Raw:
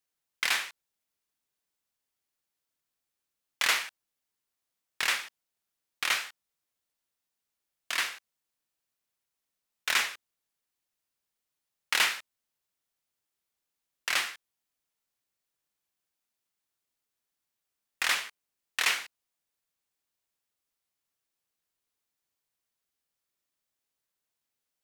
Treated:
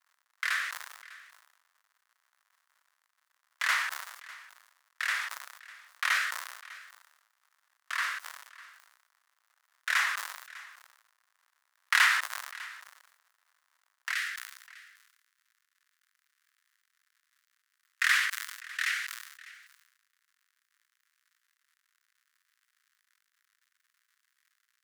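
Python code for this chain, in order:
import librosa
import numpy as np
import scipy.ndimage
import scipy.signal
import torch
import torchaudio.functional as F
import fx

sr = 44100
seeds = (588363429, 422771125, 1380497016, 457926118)

y = fx.rotary(x, sr, hz=0.65)
y = fx.dmg_crackle(y, sr, seeds[0], per_s=160.0, level_db=-54.0)
y = fx.highpass(y, sr, hz=fx.steps((0.0, 660.0), (14.13, 1500.0)), slope=24)
y = fx.band_shelf(y, sr, hz=1400.0, db=10.0, octaves=1.2)
y = y + 10.0 ** (-19.5 / 20.0) * np.pad(y, (int(600 * sr / 1000.0), 0))[:len(y)]
y = fx.sustainer(y, sr, db_per_s=53.0)
y = F.gain(torch.from_numpy(y), -3.0).numpy()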